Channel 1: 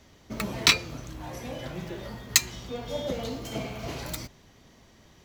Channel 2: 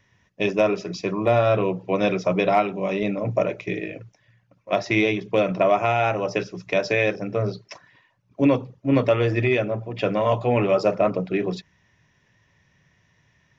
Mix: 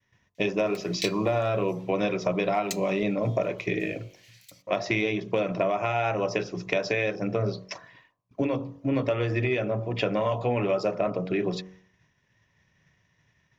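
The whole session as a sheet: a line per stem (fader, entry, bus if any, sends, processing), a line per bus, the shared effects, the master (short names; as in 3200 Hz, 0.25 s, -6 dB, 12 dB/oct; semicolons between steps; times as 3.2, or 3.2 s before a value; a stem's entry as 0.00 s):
-2.0 dB, 0.35 s, no send, steep high-pass 2000 Hz; rotary speaker horn 0.7 Hz; auto duck -11 dB, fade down 1.85 s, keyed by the second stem
+3.0 dB, 0.00 s, no send, compressor 6:1, threshold -25 dBFS, peak gain reduction 11 dB; expander -55 dBFS; de-hum 46.68 Hz, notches 27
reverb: off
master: dry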